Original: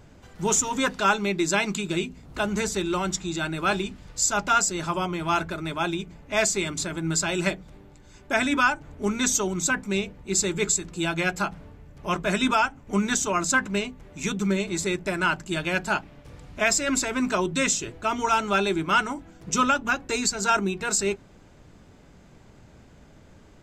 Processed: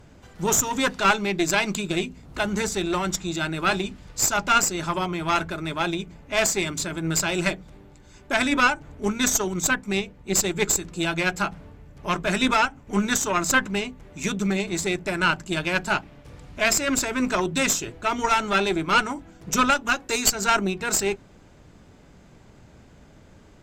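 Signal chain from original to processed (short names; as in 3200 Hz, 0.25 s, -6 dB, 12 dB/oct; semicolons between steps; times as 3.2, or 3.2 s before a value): 9–10.68 transient shaper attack +1 dB, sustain -4 dB; 19.7–20.33 tone controls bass -7 dB, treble +4 dB; added harmonics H 2 -6 dB, 6 -34 dB, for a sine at -7.5 dBFS; gain +1 dB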